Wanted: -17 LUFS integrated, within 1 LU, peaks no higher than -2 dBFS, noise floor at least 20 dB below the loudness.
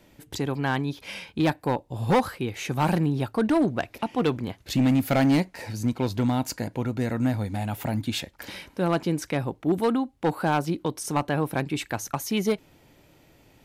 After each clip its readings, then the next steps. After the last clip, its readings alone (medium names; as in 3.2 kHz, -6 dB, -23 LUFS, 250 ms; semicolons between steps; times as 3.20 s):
clipped samples 1.2%; clipping level -16.0 dBFS; loudness -26.5 LUFS; peak level -16.0 dBFS; loudness target -17.0 LUFS
-> clip repair -16 dBFS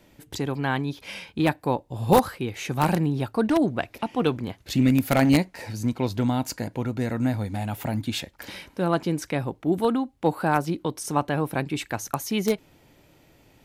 clipped samples 0.0%; loudness -25.5 LUFS; peak level -7.0 dBFS; loudness target -17.0 LUFS
-> trim +8.5 dB; peak limiter -2 dBFS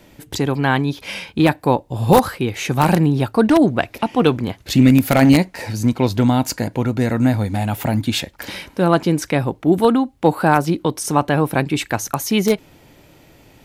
loudness -17.5 LUFS; peak level -2.0 dBFS; noise floor -50 dBFS